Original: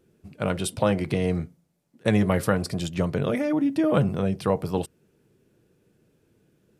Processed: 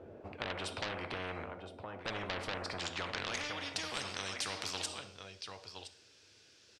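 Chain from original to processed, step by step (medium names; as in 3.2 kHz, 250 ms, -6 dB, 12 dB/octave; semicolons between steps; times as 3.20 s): resonant low shelf 120 Hz +9 dB, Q 3; band-pass sweep 590 Hz -> 5.1 kHz, 2.58–3.81 s; in parallel at +2 dB: compression, threshold -38 dBFS, peak gain reduction 16 dB; on the sum: delay 1017 ms -20.5 dB; plate-style reverb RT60 0.58 s, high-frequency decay 1×, DRR 12 dB; saturation -25 dBFS, distortion -10 dB; distance through air 79 m; spectrum-flattening compressor 4:1; trim +7 dB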